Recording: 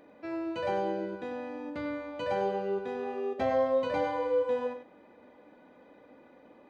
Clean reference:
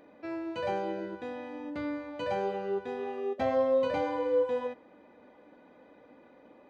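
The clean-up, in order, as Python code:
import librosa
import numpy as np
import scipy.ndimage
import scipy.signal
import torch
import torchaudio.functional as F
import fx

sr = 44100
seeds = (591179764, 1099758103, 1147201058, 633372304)

y = fx.fix_echo_inverse(x, sr, delay_ms=97, level_db=-9.5)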